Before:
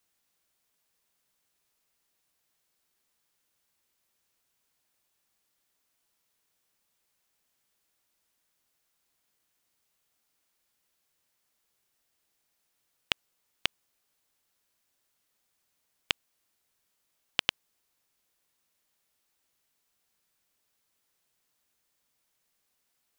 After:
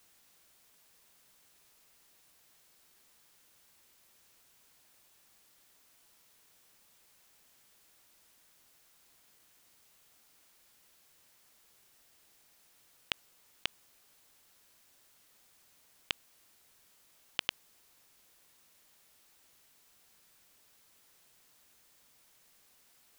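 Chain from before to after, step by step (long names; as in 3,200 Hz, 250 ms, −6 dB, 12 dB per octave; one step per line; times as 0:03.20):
compressor whose output falls as the input rises −35 dBFS, ratio −1
level +3 dB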